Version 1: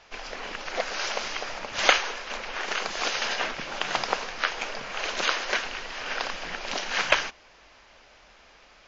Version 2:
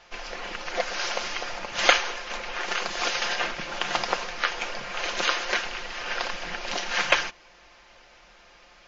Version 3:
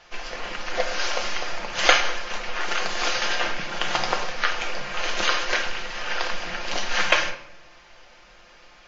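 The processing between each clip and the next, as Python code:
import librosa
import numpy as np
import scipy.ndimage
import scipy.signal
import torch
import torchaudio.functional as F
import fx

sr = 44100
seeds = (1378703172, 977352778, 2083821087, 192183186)

y1 = x + 0.46 * np.pad(x, (int(5.7 * sr / 1000.0), 0))[:len(x)]
y2 = fx.room_shoebox(y1, sr, seeds[0], volume_m3=150.0, walls='mixed', distance_m=0.57)
y2 = y2 * 10.0 ** (1.0 / 20.0)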